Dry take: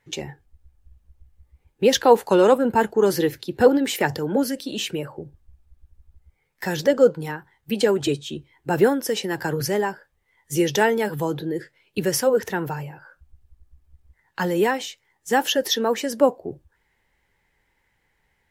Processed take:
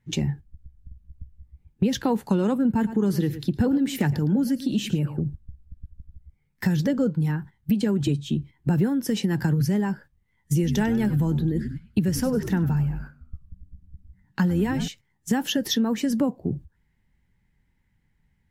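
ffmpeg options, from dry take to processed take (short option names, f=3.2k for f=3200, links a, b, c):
-filter_complex "[0:a]asettb=1/sr,asplit=3[a][b][c];[a]atrim=end=2.734[d];[b]atrim=start=2.73:end=5.2,asetpts=PTS-STARTPTS,afade=t=in:d=0.004:c=qsin,afade=t=out:st=2.466:d=0.004:c=qsin,aecho=1:1:111:0.15,atrim=end_sample=108927[e];[c]atrim=start=5.196[f];[d][e]acrossfade=d=0.004:c1=hsin:c2=qsin[g];[g][f]acrossfade=d=0.004:c1=qsin:c2=hsin,asettb=1/sr,asplit=3[h][i][j];[h]atrim=end=10.534[k];[i]atrim=start=10.53:end=14.88,asetpts=PTS-STARTPTS,afade=t=in:d=0.004:c=qsin,afade=t=out:st=4.346:d=0.004:c=qsin,asplit=5[l][m][n][o][p];[m]adelay=97,afreqshift=-97,volume=-14.5dB[q];[n]adelay=194,afreqshift=-194,volume=-22dB[r];[o]adelay=291,afreqshift=-291,volume=-29.6dB[s];[p]adelay=388,afreqshift=-388,volume=-37.1dB[t];[l][q][r][s][t]amix=inputs=5:normalize=0,atrim=end_sample=191835[u];[j]atrim=start=14.876[v];[k][u]acrossfade=d=0.004:c1=hsin:c2=qsin[w];[w][v]acrossfade=d=0.004:c1=qsin:c2=hsin,agate=range=-9dB:threshold=-45dB:ratio=16:detection=peak,lowshelf=f=310:t=q:w=1.5:g=14,acompressor=threshold=-21dB:ratio=4"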